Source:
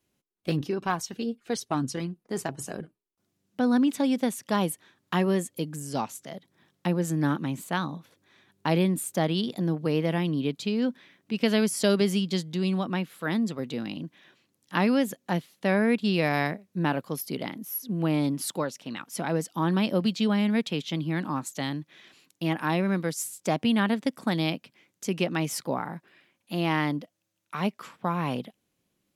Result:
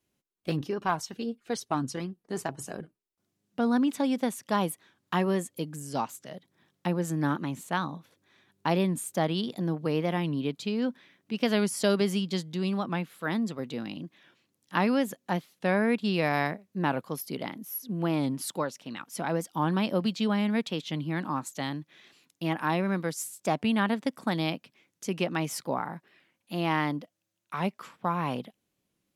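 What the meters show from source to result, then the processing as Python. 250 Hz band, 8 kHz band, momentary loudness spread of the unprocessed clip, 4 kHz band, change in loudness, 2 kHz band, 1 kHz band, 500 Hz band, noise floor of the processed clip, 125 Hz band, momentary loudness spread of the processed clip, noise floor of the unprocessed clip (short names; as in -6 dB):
-2.5 dB, -3.0 dB, 12 LU, -2.5 dB, -2.0 dB, -1.5 dB, +0.5 dB, -1.5 dB, -80 dBFS, -3.0 dB, 11 LU, -77 dBFS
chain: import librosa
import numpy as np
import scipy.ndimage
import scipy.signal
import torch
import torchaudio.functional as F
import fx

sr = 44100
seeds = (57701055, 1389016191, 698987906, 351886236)

y = fx.dynamic_eq(x, sr, hz=1000.0, q=0.94, threshold_db=-40.0, ratio=4.0, max_db=4)
y = fx.record_warp(y, sr, rpm=45.0, depth_cents=100.0)
y = y * librosa.db_to_amplitude(-3.0)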